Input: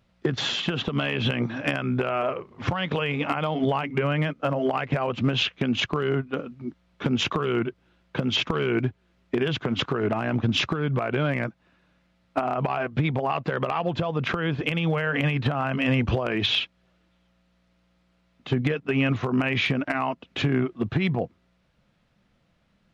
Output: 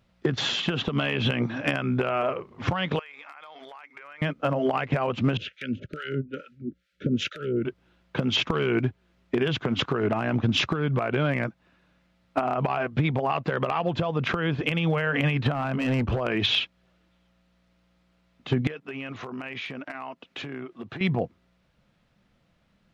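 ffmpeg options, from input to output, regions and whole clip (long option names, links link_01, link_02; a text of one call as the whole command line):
ffmpeg -i in.wav -filter_complex "[0:a]asettb=1/sr,asplit=3[link_01][link_02][link_03];[link_01]atrim=end=2.994[link_04];[link_02]atrim=start=2.99:end=4.22,asetpts=PTS-STARTPTS,afade=type=in:duration=0.004:curve=qsin,afade=type=out:start_time=1.226:duration=0.004:curve=qsin,highpass=1200,equalizer=frequency=2900:width_type=o:width=0.21:gain=-13.5,acompressor=threshold=-40dB:ratio=12:attack=3.2:release=140:knee=1:detection=peak[link_05];[link_03]atrim=start=4.216[link_06];[link_04][link_05]acrossfade=duration=0.004:curve1=hsin:curve2=qsin[link_07];[link_07][link_06]acrossfade=duration=0.004:curve1=qsin:curve2=hsin,asettb=1/sr,asplit=3[link_08][link_09][link_10];[link_08]atrim=end=5.374[link_11];[link_09]atrim=start=5.37:end=7.65,asetpts=PTS-STARTPTS,afade=type=in:duration=0.004:curve=qsin,afade=type=out:start_time=2.276:duration=0.004:curve=qsin,asuperstop=centerf=900:order=20:qfactor=1.3,acrossover=split=730[link_12][link_13];[link_12]aeval=exprs='val(0)*(1-1/2+1/2*cos(2*PI*2.3*n/s))':channel_layout=same[link_14];[link_13]aeval=exprs='val(0)*(1-1/2-1/2*cos(2*PI*2.3*n/s))':channel_layout=same[link_15];[link_14][link_15]amix=inputs=2:normalize=0[link_16];[link_10]atrim=start=7.646[link_17];[link_11][link_16]acrossfade=duration=0.004:curve1=hsin:curve2=qsin[link_18];[link_18][link_17]acrossfade=duration=0.004:curve1=qsin:curve2=hsin,asettb=1/sr,asplit=3[link_19][link_20][link_21];[link_19]atrim=end=15.524[link_22];[link_20]atrim=start=15.52:end=16.21,asetpts=PTS-STARTPTS,afade=type=in:duration=0.004:curve=qsin,afade=type=out:start_time=0.686:duration=0.004:curve=qsin,asoftclip=type=hard:threshold=-21dB,highshelf=frequency=2900:gain=-10[link_23];[link_21]atrim=start=16.206[link_24];[link_22][link_23]acrossfade=duration=0.004:curve1=hsin:curve2=qsin[link_25];[link_25][link_24]acrossfade=duration=0.004:curve1=qsin:curve2=hsin,asettb=1/sr,asplit=3[link_26][link_27][link_28];[link_26]atrim=end=18.674[link_29];[link_27]atrim=start=18.67:end=21.01,asetpts=PTS-STARTPTS,afade=type=in:duration=0.004:curve=qsin,afade=type=out:start_time=2.336:duration=0.004:curve=qsin,highpass=frequency=350:poles=1,acompressor=threshold=-35dB:ratio=3:attack=3.2:release=140:knee=1:detection=peak[link_30];[link_28]atrim=start=21.006[link_31];[link_29][link_30]acrossfade=duration=0.004:curve1=hsin:curve2=qsin[link_32];[link_32][link_31]acrossfade=duration=0.004:curve1=qsin:curve2=hsin" out.wav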